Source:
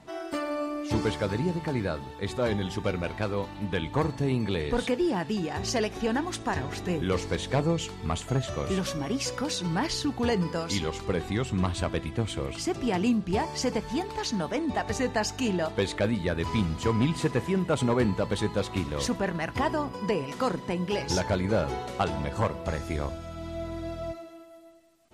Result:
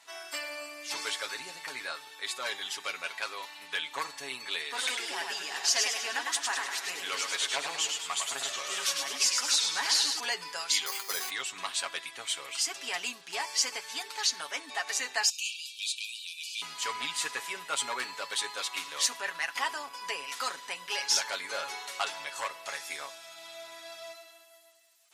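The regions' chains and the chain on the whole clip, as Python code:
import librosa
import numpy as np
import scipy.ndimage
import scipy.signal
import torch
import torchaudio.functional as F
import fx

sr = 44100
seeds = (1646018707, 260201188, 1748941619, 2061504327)

y = fx.chain(x, sr, fx.highpass(hz=150.0, slope=12),
    fx.notch(hz=520.0, q=16.0),
    fx.echo_warbled(ms=103, feedback_pct=50, rate_hz=2.8, cents=144, wet_db=-4), at=(4.64, 10.2))
y = fx.chain(y, sr, fx.peak_eq(hz=140.0, db=-14.5, octaves=0.28),
    fx.resample_bad(factor=8, down='filtered', up='hold'),
    fx.sustainer(db_per_s=52.0), at=(10.86, 11.3))
y = fx.chain(y, sr, fx.brickwall_highpass(low_hz=2300.0),
    fx.transient(attack_db=-6, sustain_db=3), at=(15.29, 16.62))
y = scipy.signal.sosfilt(scipy.signal.butter(2, 1300.0, 'highpass', fs=sr, output='sos'), y)
y = fx.high_shelf(y, sr, hz=3800.0, db=8.0)
y = y + 0.65 * np.pad(y, (int(7.2 * sr / 1000.0), 0))[:len(y)]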